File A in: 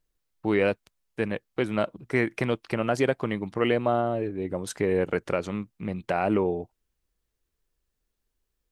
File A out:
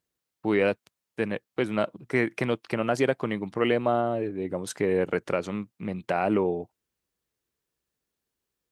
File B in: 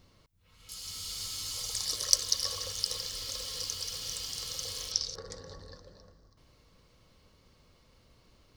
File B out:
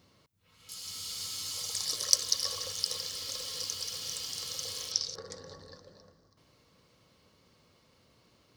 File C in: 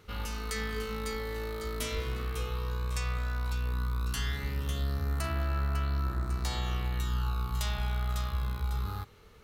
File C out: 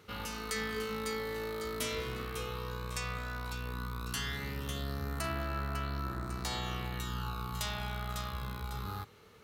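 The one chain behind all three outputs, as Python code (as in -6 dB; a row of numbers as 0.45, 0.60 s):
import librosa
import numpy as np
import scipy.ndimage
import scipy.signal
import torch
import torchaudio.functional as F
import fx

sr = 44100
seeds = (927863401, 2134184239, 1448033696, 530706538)

y = scipy.signal.sosfilt(scipy.signal.butter(2, 110.0, 'highpass', fs=sr, output='sos'), x)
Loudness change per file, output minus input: 0.0, 0.0, -4.0 LU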